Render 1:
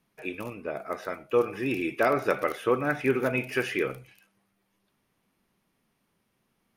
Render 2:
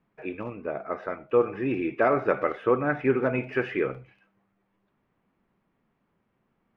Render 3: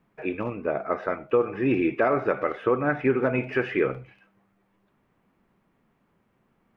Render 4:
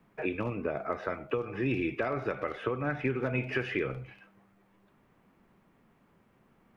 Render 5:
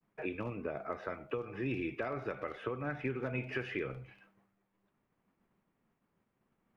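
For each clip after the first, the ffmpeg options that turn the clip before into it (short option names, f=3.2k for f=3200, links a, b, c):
-af "lowpass=1.8k,volume=2dB"
-af "alimiter=limit=-17dB:level=0:latency=1:release=347,volume=5dB"
-filter_complex "[0:a]acrossover=split=120|3000[a][b][c];[b]acompressor=threshold=-33dB:ratio=6[d];[a][d][c]amix=inputs=3:normalize=0,volume=3dB"
-af "agate=range=-33dB:threshold=-58dB:ratio=3:detection=peak,volume=-6dB"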